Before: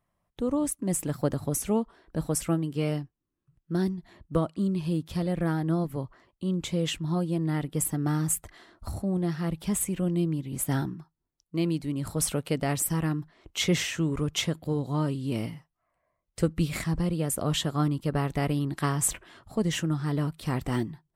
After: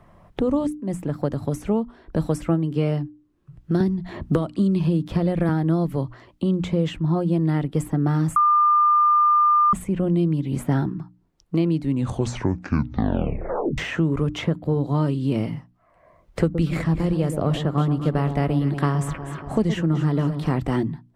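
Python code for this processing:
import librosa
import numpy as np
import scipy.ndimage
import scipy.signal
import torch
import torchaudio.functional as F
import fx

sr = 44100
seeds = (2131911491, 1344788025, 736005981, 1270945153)

y = fx.band_squash(x, sr, depth_pct=100, at=(3.8, 5.49))
y = fx.echo_alternate(y, sr, ms=119, hz=980.0, feedback_pct=61, wet_db=-9.0, at=(16.52, 20.58), fade=0.02)
y = fx.edit(y, sr, fx.fade_in_from(start_s=0.67, length_s=1.65, floor_db=-13.0),
    fx.bleep(start_s=8.36, length_s=1.37, hz=1200.0, db=-15.0),
    fx.tape_stop(start_s=11.8, length_s=1.98), tone=tone)
y = fx.lowpass(y, sr, hz=1200.0, slope=6)
y = fx.hum_notches(y, sr, base_hz=60, count=5)
y = fx.band_squash(y, sr, depth_pct=70)
y = y * librosa.db_to_amplitude(6.5)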